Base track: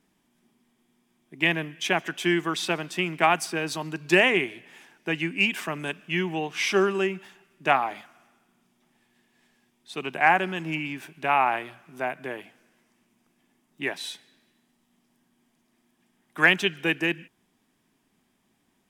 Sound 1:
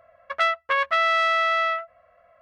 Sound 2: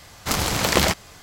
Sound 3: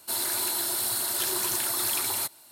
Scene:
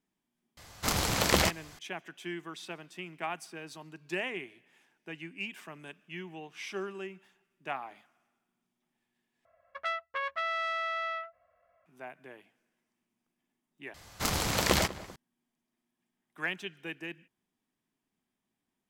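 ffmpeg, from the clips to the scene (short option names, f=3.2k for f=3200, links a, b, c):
-filter_complex "[2:a]asplit=2[a][b];[0:a]volume=-15.5dB[c];[b]asplit=2[d][e];[e]adelay=194,lowpass=f=1.8k:p=1,volume=-16dB,asplit=2[f][g];[g]adelay=194,lowpass=f=1.8k:p=1,volume=0.47,asplit=2[h][i];[i]adelay=194,lowpass=f=1.8k:p=1,volume=0.47,asplit=2[j][k];[k]adelay=194,lowpass=f=1.8k:p=1,volume=0.47[l];[d][f][h][j][l]amix=inputs=5:normalize=0[m];[c]asplit=3[n][o][p];[n]atrim=end=9.454[q];[1:a]atrim=end=2.41,asetpts=PTS-STARTPTS,volume=-12dB[r];[o]atrim=start=11.856:end=13.944[s];[m]atrim=end=1.22,asetpts=PTS-STARTPTS,volume=-7.5dB[t];[p]atrim=start=15.156[u];[a]atrim=end=1.22,asetpts=PTS-STARTPTS,volume=-6.5dB,afade=t=in:d=0.004:c=hsin,afade=t=out:st=1.216:d=0.004:c=hsin,adelay=570[v];[q][r]acrossfade=d=0.004:c1=hsin:c2=hsin[w];[w][s]acrossfade=d=0.004:c1=hsin:c2=hsin[x];[x][t]acrossfade=d=0.004:c1=hsin:c2=hsin[y];[y][u]acrossfade=d=0.004:c1=hsin:c2=hsin[z];[z][v]amix=inputs=2:normalize=0"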